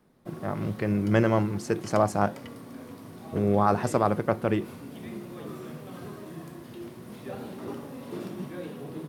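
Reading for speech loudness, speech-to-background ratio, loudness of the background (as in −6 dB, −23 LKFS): −26.5 LKFS, 14.0 dB, −40.5 LKFS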